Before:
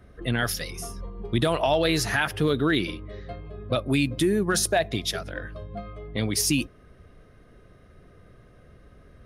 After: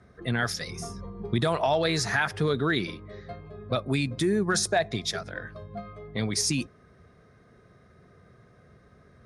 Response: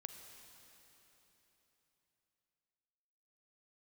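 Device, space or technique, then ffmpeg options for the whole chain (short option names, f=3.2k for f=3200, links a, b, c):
car door speaker: -filter_complex "[0:a]asettb=1/sr,asplit=3[a][b][c];[a]atrim=end=0.674[d];[b]atrim=start=0.67:end=1.34,asetpts=PTS-STARTPTS,afade=t=in:d=0.004:c=qsin,afade=t=out:st=0.666:d=0.004:c=qsin,lowshelf=f=360:g=6[e];[c]atrim=start=1.336[f];[d][e]acrossfade=d=0.004:c1=hsin:c2=qsin[g];[g][f]acrossfade=d=0.004:c1=qsin:c2=hsin,highpass=100,equalizer=f=300:t=q:w=4:g=-7,equalizer=f=550:t=q:w=4:g=-4,equalizer=f=2.9k:t=q:w=4:g=-10,lowpass=f=8.7k:w=0.5412,lowpass=f=8.7k:w=1.3066"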